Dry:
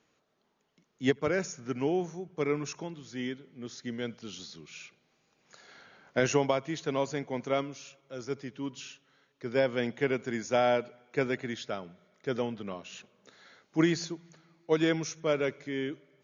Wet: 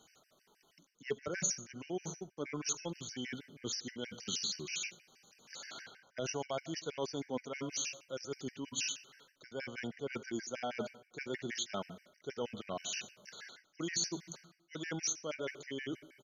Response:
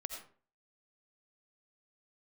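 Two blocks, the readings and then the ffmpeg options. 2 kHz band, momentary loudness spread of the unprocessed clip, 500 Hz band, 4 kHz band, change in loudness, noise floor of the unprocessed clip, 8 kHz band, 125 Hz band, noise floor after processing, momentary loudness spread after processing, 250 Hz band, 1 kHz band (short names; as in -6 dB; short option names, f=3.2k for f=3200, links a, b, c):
-7.5 dB, 17 LU, -11.5 dB, +0.5 dB, -8.0 dB, -73 dBFS, n/a, -10.0 dB, -74 dBFS, 13 LU, -10.5 dB, -10.5 dB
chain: -filter_complex "[0:a]areverse,acompressor=threshold=-41dB:ratio=6,areverse,aresample=32000,aresample=44100,crystalizer=i=3:c=0,flanger=delay=1.3:depth=4.3:regen=63:speed=0.31:shape=sinusoidal,asplit=2[a][b];[1:a]atrim=start_sample=2205[c];[b][c]afir=irnorm=-1:irlink=0,volume=-9dB[d];[a][d]amix=inputs=2:normalize=0,afftfilt=real='re*gt(sin(2*PI*6.3*pts/sr)*(1-2*mod(floor(b*sr/1024/1500),2)),0)':imag='im*gt(sin(2*PI*6.3*pts/sr)*(1-2*mod(floor(b*sr/1024/1500),2)),0)':win_size=1024:overlap=0.75,volume=8dB"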